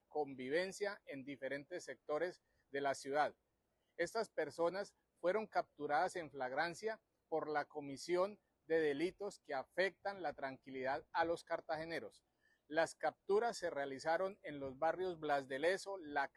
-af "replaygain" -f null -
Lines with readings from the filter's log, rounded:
track_gain = +19.8 dB
track_peak = 0.054